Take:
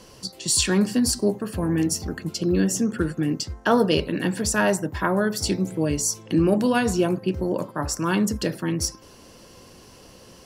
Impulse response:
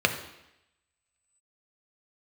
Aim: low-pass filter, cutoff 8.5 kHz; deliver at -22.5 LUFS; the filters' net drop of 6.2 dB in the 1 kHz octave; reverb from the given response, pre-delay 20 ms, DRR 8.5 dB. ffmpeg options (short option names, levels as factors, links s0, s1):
-filter_complex "[0:a]lowpass=8500,equalizer=f=1000:t=o:g=-8.5,asplit=2[s0][s1];[1:a]atrim=start_sample=2205,adelay=20[s2];[s1][s2]afir=irnorm=-1:irlink=0,volume=0.0708[s3];[s0][s3]amix=inputs=2:normalize=0,volume=1.19"